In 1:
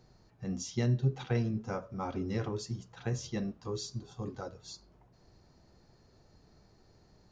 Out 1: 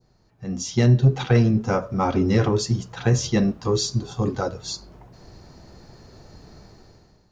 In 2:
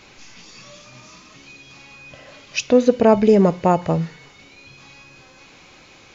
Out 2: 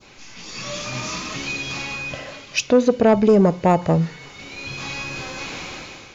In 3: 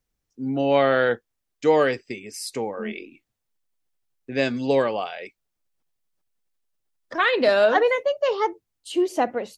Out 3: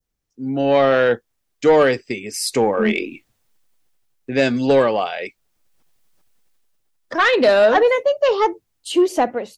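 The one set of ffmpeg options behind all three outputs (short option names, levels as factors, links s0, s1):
-af "adynamicequalizer=threshold=0.0224:dfrequency=2200:dqfactor=0.76:tfrequency=2200:tqfactor=0.76:attack=5:release=100:ratio=0.375:range=2:mode=cutabove:tftype=bell,dynaudnorm=f=180:g=7:m=6.31,asoftclip=type=tanh:threshold=0.501"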